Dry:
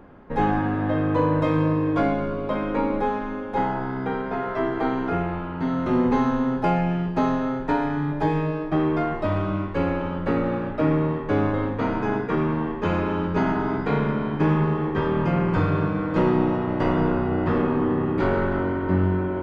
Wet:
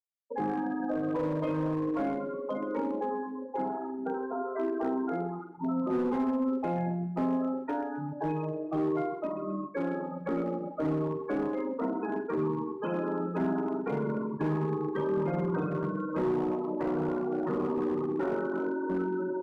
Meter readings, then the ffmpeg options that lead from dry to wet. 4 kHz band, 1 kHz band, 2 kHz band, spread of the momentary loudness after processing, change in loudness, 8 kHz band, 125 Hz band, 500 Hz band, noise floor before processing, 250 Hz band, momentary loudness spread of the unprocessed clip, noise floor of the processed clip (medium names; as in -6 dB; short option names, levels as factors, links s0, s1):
under -15 dB, -9.5 dB, -12.0 dB, 5 LU, -8.0 dB, no reading, -12.5 dB, -6.0 dB, -30 dBFS, -7.5 dB, 5 LU, -40 dBFS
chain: -filter_complex "[0:a]highpass=f=120:w=0.5412,highpass=f=120:w=1.3066,aemphasis=mode=production:type=riaa,bandreject=f=60:t=h:w=6,bandreject=f=120:t=h:w=6,bandreject=f=180:t=h:w=6,bandreject=f=240:t=h:w=6,bandreject=f=300:t=h:w=6,bandreject=f=360:t=h:w=6,bandreject=f=420:t=h:w=6,afftfilt=real='re*gte(hypot(re,im),0.0891)':imag='im*gte(hypot(re,im),0.0891)':win_size=1024:overlap=0.75,highshelf=f=2800:g=-2.5,acrossover=split=460|530[s0][s1][s2];[s1]alimiter=level_in=4.73:limit=0.0631:level=0:latency=1:release=17,volume=0.211[s3];[s2]acompressor=threshold=0.00891:ratio=6[s4];[s0][s3][s4]amix=inputs=3:normalize=0,volume=16.8,asoftclip=hard,volume=0.0596,asplit=2[s5][s6];[s6]adelay=46,volume=0.299[s7];[s5][s7]amix=inputs=2:normalize=0,aecho=1:1:131|262|393|524:0.158|0.0745|0.035|0.0165"